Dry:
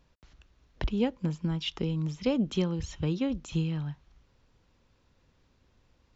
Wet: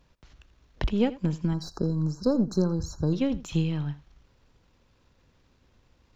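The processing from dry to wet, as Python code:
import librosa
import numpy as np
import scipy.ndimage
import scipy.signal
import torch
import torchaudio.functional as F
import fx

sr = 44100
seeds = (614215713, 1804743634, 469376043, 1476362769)

y = np.where(x < 0.0, 10.0 ** (-3.0 / 20.0) * x, x)
y = fx.spec_erase(y, sr, start_s=1.54, length_s=1.59, low_hz=1700.0, high_hz=3900.0)
y = y + 10.0 ** (-17.5 / 20.0) * np.pad(y, (int(83 * sr / 1000.0), 0))[:len(y)]
y = F.gain(torch.from_numpy(y), 4.5).numpy()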